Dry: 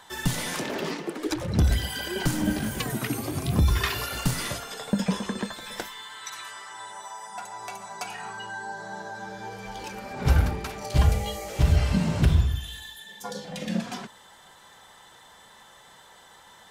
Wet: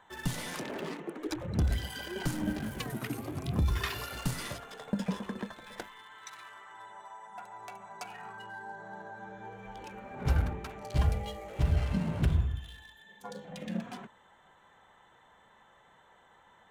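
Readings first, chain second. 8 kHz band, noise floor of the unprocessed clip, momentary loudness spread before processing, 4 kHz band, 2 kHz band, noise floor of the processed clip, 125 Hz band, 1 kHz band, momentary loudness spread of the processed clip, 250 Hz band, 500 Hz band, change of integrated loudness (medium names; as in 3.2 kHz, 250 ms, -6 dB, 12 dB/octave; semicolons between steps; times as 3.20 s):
-11.0 dB, -52 dBFS, 15 LU, -10.0 dB, -8.0 dB, -62 dBFS, -7.0 dB, -7.5 dB, 17 LU, -7.0 dB, -7.0 dB, -7.0 dB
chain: local Wiener filter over 9 samples; trim -7 dB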